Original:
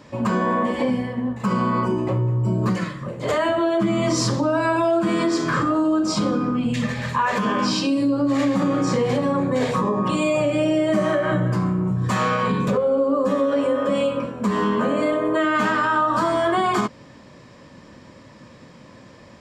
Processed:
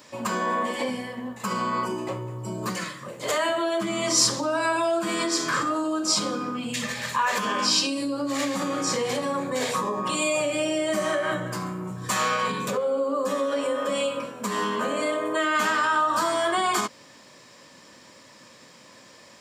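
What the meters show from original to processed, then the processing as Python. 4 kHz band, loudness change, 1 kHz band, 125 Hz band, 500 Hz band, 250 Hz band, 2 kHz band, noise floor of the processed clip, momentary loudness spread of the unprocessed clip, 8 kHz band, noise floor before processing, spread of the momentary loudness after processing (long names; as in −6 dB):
+3.5 dB, −4.5 dB, −3.0 dB, −13.5 dB, −5.0 dB, −9.0 dB, −1.0 dB, −51 dBFS, 4 LU, +7.5 dB, −46 dBFS, 9 LU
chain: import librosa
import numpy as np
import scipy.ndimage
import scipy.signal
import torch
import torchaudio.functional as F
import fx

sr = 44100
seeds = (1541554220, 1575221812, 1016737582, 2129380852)

y = fx.riaa(x, sr, side='recording')
y = F.gain(torch.from_numpy(y), -3.0).numpy()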